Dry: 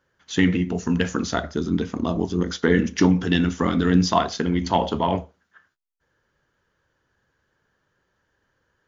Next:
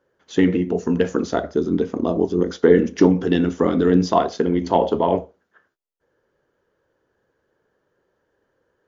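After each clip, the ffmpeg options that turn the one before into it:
-af "equalizer=f=450:w=0.71:g=14.5,volume=0.501"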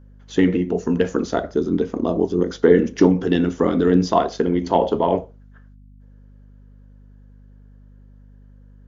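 -af "aeval=exprs='val(0)+0.00562*(sin(2*PI*50*n/s)+sin(2*PI*2*50*n/s)/2+sin(2*PI*3*50*n/s)/3+sin(2*PI*4*50*n/s)/4+sin(2*PI*5*50*n/s)/5)':c=same"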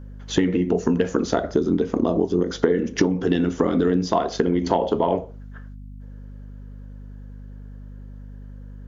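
-af "acompressor=threshold=0.0631:ratio=10,volume=2.51"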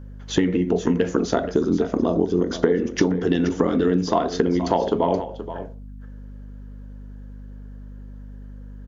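-af "aecho=1:1:476:0.251"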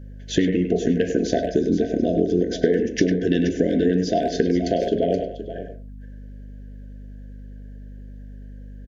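-filter_complex "[0:a]asplit=2[s0][s1];[s1]adelay=100,highpass=300,lowpass=3400,asoftclip=type=hard:threshold=0.251,volume=0.447[s2];[s0][s2]amix=inputs=2:normalize=0,afftfilt=real='re*(1-between(b*sr/4096,730,1500))':imag='im*(1-between(b*sr/4096,730,1500))':win_size=4096:overlap=0.75"

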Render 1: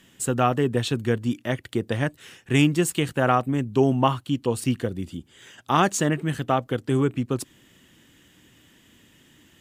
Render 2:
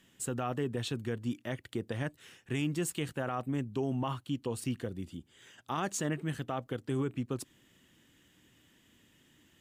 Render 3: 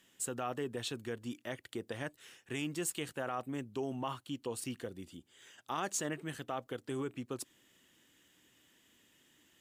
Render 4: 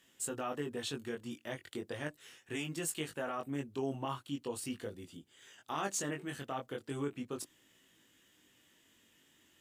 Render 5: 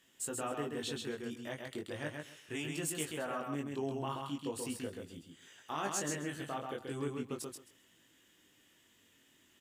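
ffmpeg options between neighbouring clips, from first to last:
-af "alimiter=limit=0.188:level=0:latency=1:release=47,volume=0.355"
-af "bass=f=250:g=-9,treble=f=4000:g=3,volume=0.794"
-af "flanger=delay=18.5:depth=3.6:speed=0.38,volume=1.41"
-af "aecho=1:1:132|264|396:0.631|0.114|0.0204,volume=0.891"

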